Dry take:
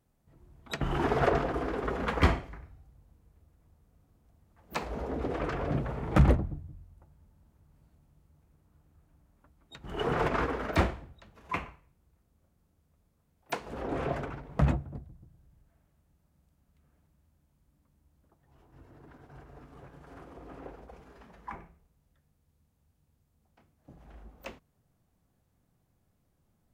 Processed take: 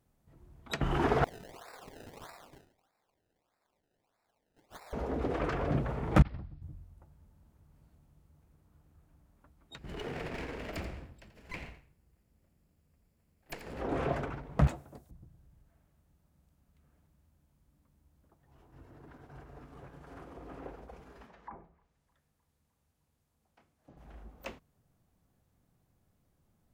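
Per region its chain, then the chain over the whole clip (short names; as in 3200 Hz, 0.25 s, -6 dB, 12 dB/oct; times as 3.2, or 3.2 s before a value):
1.24–4.93 HPF 640 Hz 24 dB/oct + compressor 4:1, threshold -49 dBFS + decimation with a swept rate 27× 1.6 Hz
6.22–6.62 passive tone stack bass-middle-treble 5-5-5 + negative-ratio compressor -40 dBFS, ratio -0.5 + careless resampling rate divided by 4×, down none, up filtered
9.78–13.8 minimum comb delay 0.41 ms + compressor 3:1, threshold -39 dBFS + echo 85 ms -10.5 dB
14.67–15.11 tone controls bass -15 dB, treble +13 dB + hard clip -28 dBFS + compressor 2.5:1, threshold -39 dBFS
21.26–23.97 low shelf 260 Hz -9 dB + treble ducked by the level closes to 760 Hz, closed at -45.5 dBFS + thin delay 0.306 s, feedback 64%, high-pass 1500 Hz, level -23 dB
whole clip: dry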